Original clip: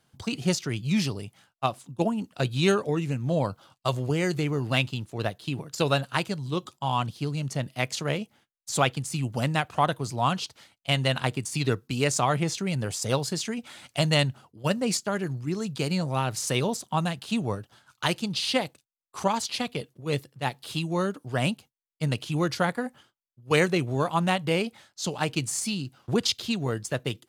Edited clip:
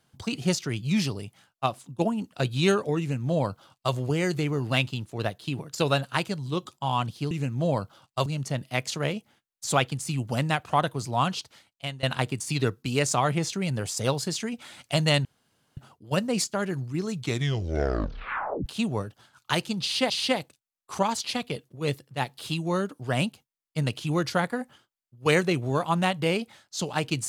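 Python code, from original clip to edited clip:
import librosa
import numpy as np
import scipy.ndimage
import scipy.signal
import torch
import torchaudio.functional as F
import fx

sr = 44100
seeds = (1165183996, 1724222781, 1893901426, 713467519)

y = fx.edit(x, sr, fx.duplicate(start_s=2.99, length_s=0.95, to_s=7.31),
    fx.fade_out_to(start_s=10.31, length_s=0.77, curve='qsin', floor_db=-22.0),
    fx.insert_room_tone(at_s=14.3, length_s=0.52),
    fx.tape_stop(start_s=15.63, length_s=1.56),
    fx.repeat(start_s=18.35, length_s=0.28, count=2), tone=tone)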